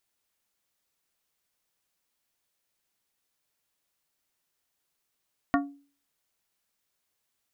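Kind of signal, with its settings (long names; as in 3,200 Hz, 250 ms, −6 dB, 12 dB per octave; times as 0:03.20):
struck glass plate, lowest mode 282 Hz, decay 0.41 s, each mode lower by 2 dB, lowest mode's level −19.5 dB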